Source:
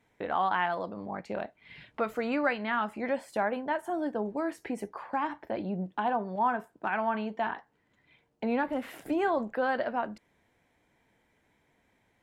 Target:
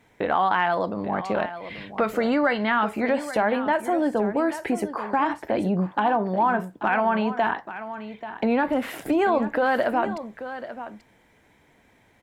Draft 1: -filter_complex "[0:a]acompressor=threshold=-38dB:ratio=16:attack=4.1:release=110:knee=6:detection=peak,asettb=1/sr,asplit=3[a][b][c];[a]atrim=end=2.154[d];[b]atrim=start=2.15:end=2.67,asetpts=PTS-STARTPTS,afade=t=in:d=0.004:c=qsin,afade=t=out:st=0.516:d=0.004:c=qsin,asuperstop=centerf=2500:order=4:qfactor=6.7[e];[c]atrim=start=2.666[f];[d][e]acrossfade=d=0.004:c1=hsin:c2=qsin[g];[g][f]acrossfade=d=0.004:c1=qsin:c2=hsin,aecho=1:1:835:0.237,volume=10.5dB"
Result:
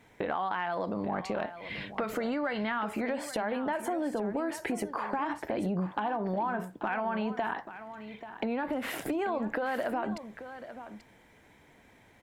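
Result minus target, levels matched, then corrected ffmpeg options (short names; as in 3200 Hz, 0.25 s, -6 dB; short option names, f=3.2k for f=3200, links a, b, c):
compressor: peak gain reduction +11 dB
-filter_complex "[0:a]acompressor=threshold=-26dB:ratio=16:attack=4.1:release=110:knee=6:detection=peak,asettb=1/sr,asplit=3[a][b][c];[a]atrim=end=2.154[d];[b]atrim=start=2.15:end=2.67,asetpts=PTS-STARTPTS,afade=t=in:d=0.004:c=qsin,afade=t=out:st=0.516:d=0.004:c=qsin,asuperstop=centerf=2500:order=4:qfactor=6.7[e];[c]atrim=start=2.666[f];[d][e]acrossfade=d=0.004:c1=hsin:c2=qsin[g];[g][f]acrossfade=d=0.004:c1=qsin:c2=hsin,aecho=1:1:835:0.237,volume=10.5dB"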